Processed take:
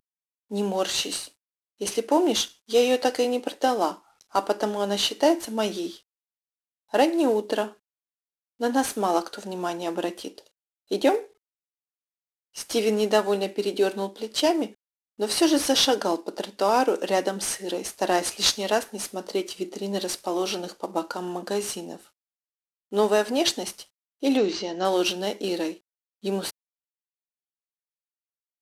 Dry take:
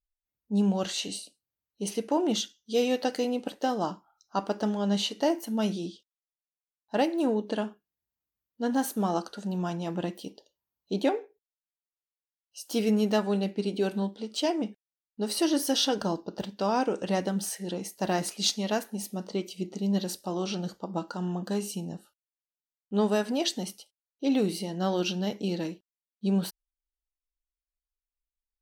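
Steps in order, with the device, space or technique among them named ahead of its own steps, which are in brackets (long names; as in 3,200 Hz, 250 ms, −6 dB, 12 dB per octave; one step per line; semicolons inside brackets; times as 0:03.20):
early wireless headset (high-pass filter 280 Hz 24 dB per octave; variable-slope delta modulation 64 kbit/s)
0:24.37–0:24.85: Butterworth low-pass 6,700 Hz 48 dB per octave
level +6.5 dB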